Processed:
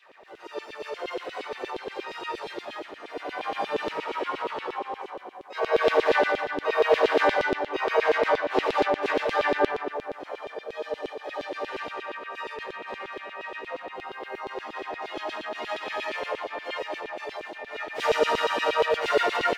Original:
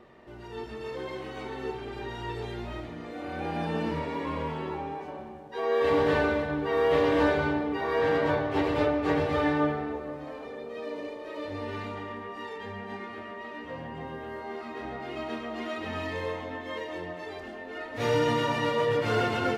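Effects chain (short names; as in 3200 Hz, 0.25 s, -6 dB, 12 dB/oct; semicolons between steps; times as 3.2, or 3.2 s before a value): harmoniser +5 st -5 dB; LFO high-pass saw down 8.5 Hz 340–3500 Hz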